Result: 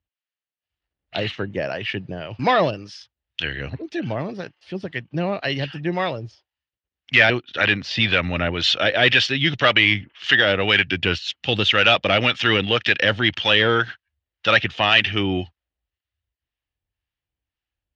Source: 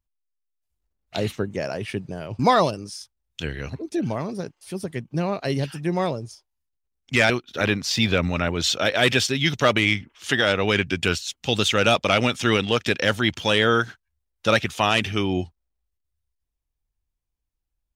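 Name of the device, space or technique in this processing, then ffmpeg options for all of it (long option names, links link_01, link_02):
guitar amplifier with harmonic tremolo: -filter_complex "[0:a]acrossover=split=750[link_01][link_02];[link_01]aeval=exprs='val(0)*(1-0.5/2+0.5/2*cos(2*PI*1.9*n/s))':channel_layout=same[link_03];[link_02]aeval=exprs='val(0)*(1-0.5/2-0.5/2*cos(2*PI*1.9*n/s))':channel_layout=same[link_04];[link_03][link_04]amix=inputs=2:normalize=0,asoftclip=type=tanh:threshold=-11.5dB,highpass=80,equalizer=frequency=160:width_type=q:width=4:gain=-4,equalizer=frequency=230:width_type=q:width=4:gain=-5,equalizer=frequency=410:width_type=q:width=4:gain=-4,equalizer=frequency=1000:width_type=q:width=4:gain=-3,equalizer=frequency=1800:width_type=q:width=4:gain=6,equalizer=frequency=2900:width_type=q:width=4:gain=7,lowpass=frequency=4400:width=0.5412,lowpass=frequency=4400:width=1.3066,volume=5dB"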